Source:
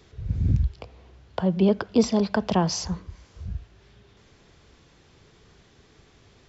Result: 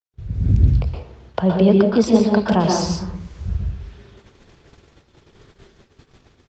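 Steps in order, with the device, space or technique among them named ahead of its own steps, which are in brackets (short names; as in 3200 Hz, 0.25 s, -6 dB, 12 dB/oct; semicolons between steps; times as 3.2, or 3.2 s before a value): speakerphone in a meeting room (reverb RT60 0.50 s, pre-delay 0.114 s, DRR 0.5 dB; speakerphone echo 90 ms, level -26 dB; AGC gain up to 8 dB; gate -43 dBFS, range -50 dB; Opus 32 kbps 48000 Hz)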